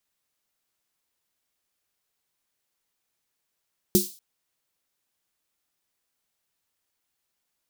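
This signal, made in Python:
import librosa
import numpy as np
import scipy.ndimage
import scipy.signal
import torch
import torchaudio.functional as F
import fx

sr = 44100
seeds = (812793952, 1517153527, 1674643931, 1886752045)

y = fx.drum_snare(sr, seeds[0], length_s=0.24, hz=200.0, second_hz=360.0, noise_db=-5.0, noise_from_hz=4000.0, decay_s=0.18, noise_decay_s=0.39)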